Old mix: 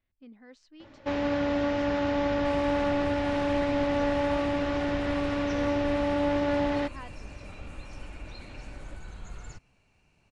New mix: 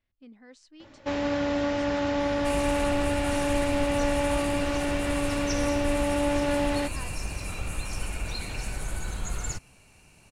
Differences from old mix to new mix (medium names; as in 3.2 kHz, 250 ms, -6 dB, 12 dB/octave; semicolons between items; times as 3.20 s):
second sound +9.5 dB; master: remove distance through air 110 m